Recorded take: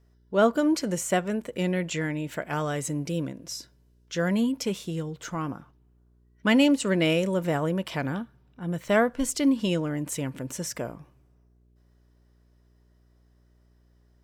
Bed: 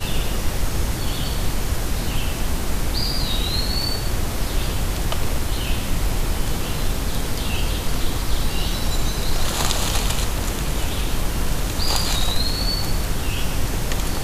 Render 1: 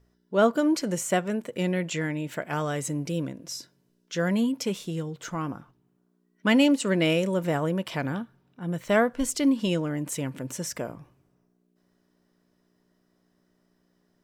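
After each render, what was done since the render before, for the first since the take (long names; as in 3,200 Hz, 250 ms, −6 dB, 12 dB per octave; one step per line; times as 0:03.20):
hum removal 60 Hz, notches 2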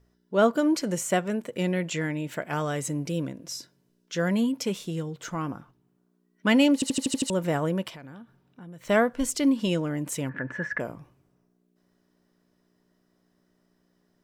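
0:06.74: stutter in place 0.08 s, 7 plays
0:07.89–0:08.85: downward compressor 5 to 1, threshold −42 dBFS
0:10.29–0:10.80: low-pass with resonance 1,700 Hz, resonance Q 14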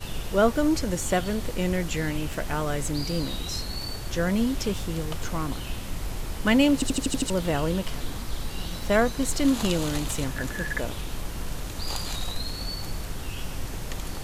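mix in bed −10.5 dB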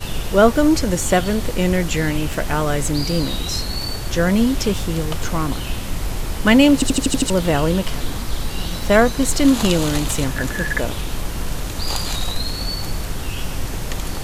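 level +8 dB
brickwall limiter −1 dBFS, peak gain reduction 1 dB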